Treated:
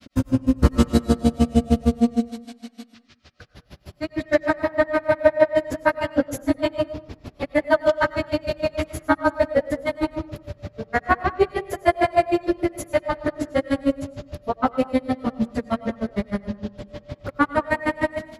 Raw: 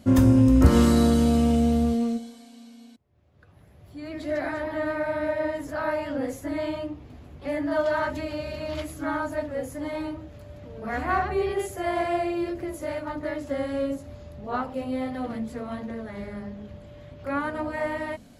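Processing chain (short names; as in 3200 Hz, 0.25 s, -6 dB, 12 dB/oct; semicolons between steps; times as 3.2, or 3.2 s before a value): notches 60/120 Hz; AGC gain up to 13 dB; band noise 1100–5300 Hz -52 dBFS; grains 77 ms, grains 6.5/s, spray 35 ms, pitch spread up and down by 0 st; on a send: reverb RT60 0.75 s, pre-delay 70 ms, DRR 14 dB; on the sum: gain +1.5 dB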